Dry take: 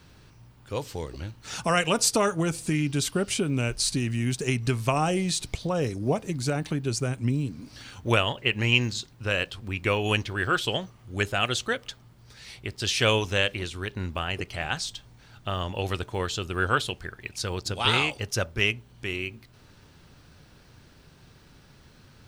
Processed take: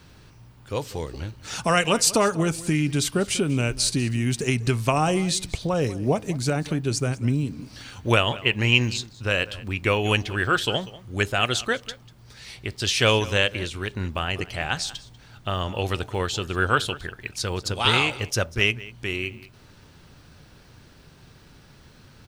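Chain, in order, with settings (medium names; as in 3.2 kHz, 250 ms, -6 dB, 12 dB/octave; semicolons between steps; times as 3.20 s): echo from a far wall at 33 m, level -18 dB; trim +3 dB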